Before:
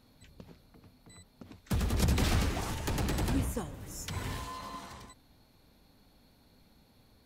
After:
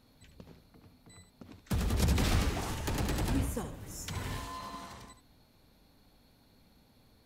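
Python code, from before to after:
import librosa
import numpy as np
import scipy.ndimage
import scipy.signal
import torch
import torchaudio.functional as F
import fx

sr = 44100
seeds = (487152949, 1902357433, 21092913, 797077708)

y = x + 10.0 ** (-10.0 / 20.0) * np.pad(x, (int(73 * sr / 1000.0), 0))[:len(x)]
y = y * librosa.db_to_amplitude(-1.0)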